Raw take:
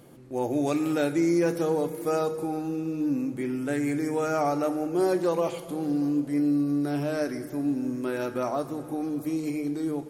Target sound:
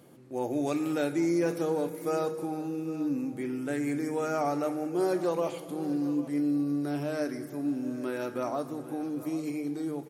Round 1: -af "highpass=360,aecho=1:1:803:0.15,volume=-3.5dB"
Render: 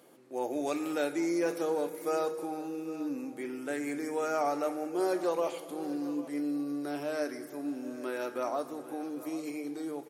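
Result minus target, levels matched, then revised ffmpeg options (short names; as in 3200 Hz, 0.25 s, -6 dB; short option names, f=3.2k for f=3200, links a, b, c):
125 Hz band -11.0 dB
-af "highpass=110,aecho=1:1:803:0.15,volume=-3.5dB"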